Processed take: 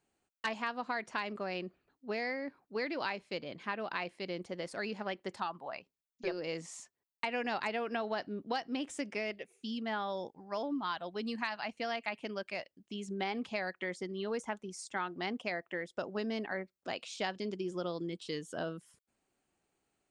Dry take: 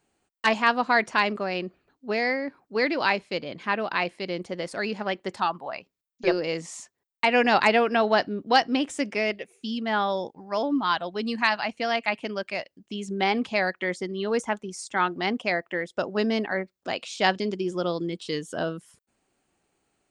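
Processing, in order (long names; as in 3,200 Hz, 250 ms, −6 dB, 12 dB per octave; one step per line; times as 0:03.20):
downward compressor 6 to 1, threshold −24 dBFS, peak gain reduction 10 dB
level −8 dB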